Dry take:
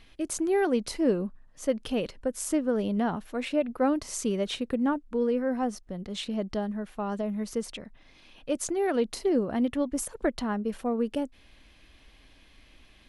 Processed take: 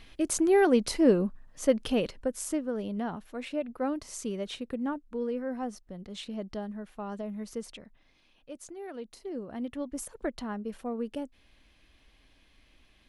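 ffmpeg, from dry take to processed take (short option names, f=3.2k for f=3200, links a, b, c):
-af "volume=11.5dB,afade=t=out:st=1.75:d=0.92:silence=0.354813,afade=t=out:st=7.68:d=0.82:silence=0.375837,afade=t=in:st=9.2:d=0.83:silence=0.375837"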